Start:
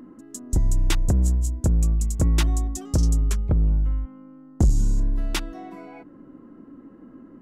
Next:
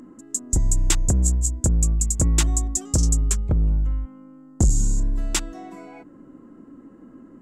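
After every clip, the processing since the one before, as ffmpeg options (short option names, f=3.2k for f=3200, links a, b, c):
-af "equalizer=f=7.5k:w=1.9:g=14"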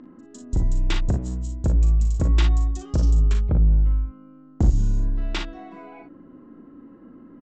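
-filter_complex "[0:a]lowpass=f=4.1k:w=0.5412,lowpass=f=4.1k:w=1.3066,asplit=2[a][b];[b]aecho=0:1:39|56:0.447|0.376[c];[a][c]amix=inputs=2:normalize=0,volume=-1.5dB"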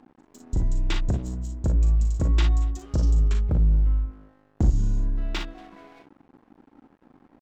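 -filter_complex "[0:a]asplit=2[a][b];[b]adelay=233.2,volume=-23dB,highshelf=f=4k:g=-5.25[c];[a][c]amix=inputs=2:normalize=0,aeval=exprs='sgn(val(0))*max(abs(val(0))-0.00501,0)':c=same,volume=-2dB"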